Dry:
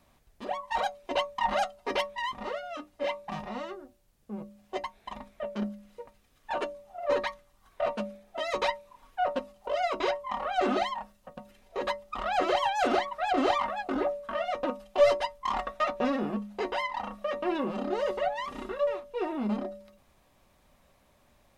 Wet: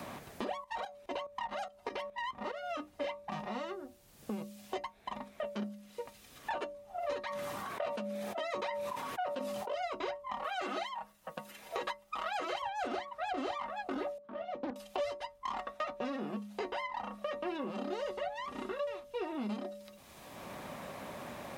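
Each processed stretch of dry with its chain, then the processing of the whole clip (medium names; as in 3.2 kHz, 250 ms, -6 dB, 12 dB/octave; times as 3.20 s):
0.64–2.70 s: tremolo saw up 4.8 Hz, depth 75% + compression 3:1, threshold -33 dBFS
7.24–9.75 s: high-pass 130 Hz + decay stretcher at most 28 dB/s
10.44–12.62 s: tilt EQ +3 dB/octave + comb 6.2 ms, depth 50%
14.18–14.76 s: band-pass filter 260 Hz, Q 1.3 + loudspeaker Doppler distortion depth 0.58 ms
whole clip: high-pass 48 Hz; three bands compressed up and down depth 100%; trim -8 dB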